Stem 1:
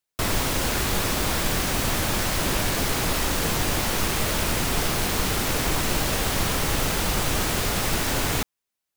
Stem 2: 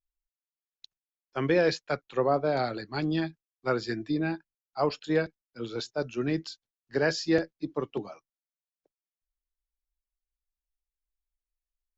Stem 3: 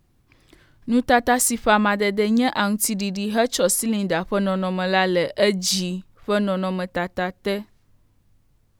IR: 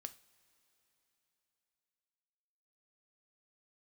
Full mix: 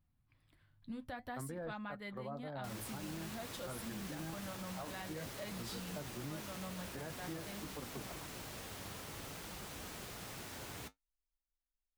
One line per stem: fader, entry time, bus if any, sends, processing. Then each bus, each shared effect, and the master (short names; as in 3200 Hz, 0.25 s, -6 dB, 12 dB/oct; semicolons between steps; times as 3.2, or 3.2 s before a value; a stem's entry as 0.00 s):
-18.5 dB, 2.45 s, no bus, no send, HPF 60 Hz
-0.5 dB, 0.00 s, bus A, no send, running mean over 17 samples
-13.5 dB, 0.00 s, bus A, no send, dry
bus A: 0.0 dB, fifteen-band EQ 100 Hz +8 dB, 400 Hz -11 dB, 6300 Hz -11 dB; compressor 3:1, threshold -38 dBFS, peak gain reduction 11.5 dB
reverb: off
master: flange 0.51 Hz, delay 3.7 ms, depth 6.7 ms, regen -60%; limiter -34.5 dBFS, peak gain reduction 6.5 dB